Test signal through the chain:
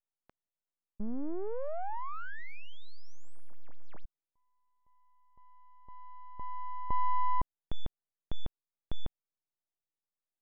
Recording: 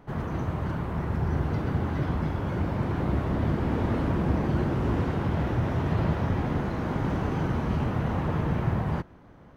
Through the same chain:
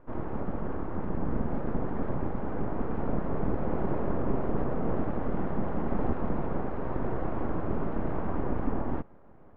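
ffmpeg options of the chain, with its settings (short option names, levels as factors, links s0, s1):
-af "aeval=exprs='abs(val(0))':c=same,lowpass=1100"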